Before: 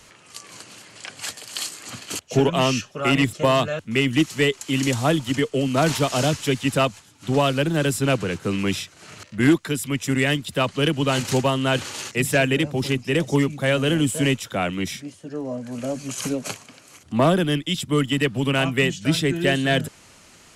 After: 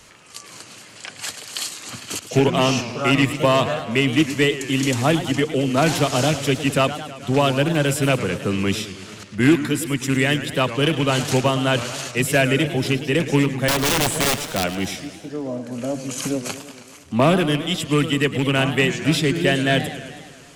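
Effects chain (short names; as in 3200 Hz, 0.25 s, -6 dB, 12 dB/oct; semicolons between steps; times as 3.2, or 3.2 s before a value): rattling part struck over -20 dBFS, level -19 dBFS; 13.68–14.64 wrapped overs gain 15.5 dB; warbling echo 0.107 s, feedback 67%, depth 199 cents, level -12.5 dB; gain +1.5 dB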